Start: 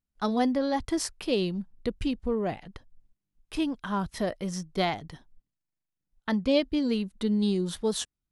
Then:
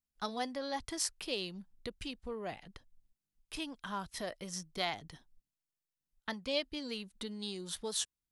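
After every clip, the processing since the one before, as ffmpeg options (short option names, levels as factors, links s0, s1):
-filter_complex "[0:a]acrossover=split=490[s0][s1];[s0]acompressor=threshold=0.0178:ratio=6[s2];[s2][s1]amix=inputs=2:normalize=0,highshelf=f=2200:g=8.5,volume=0.355"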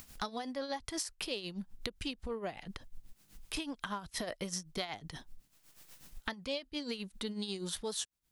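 -af "acompressor=mode=upward:threshold=0.01:ratio=2.5,tremolo=f=8.1:d=0.65,acompressor=threshold=0.00562:ratio=12,volume=3.35"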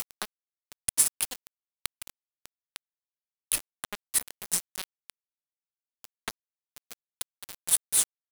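-af "aexciter=amount=7:drive=6.8:freq=8000,aeval=exprs='val(0)*gte(abs(val(0)),0.0473)':c=same,volume=1.88"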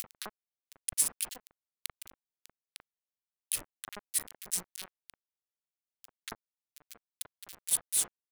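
-filter_complex "[0:a]acrossover=split=1700[s0][s1];[s0]adelay=40[s2];[s2][s1]amix=inputs=2:normalize=0,volume=0.562"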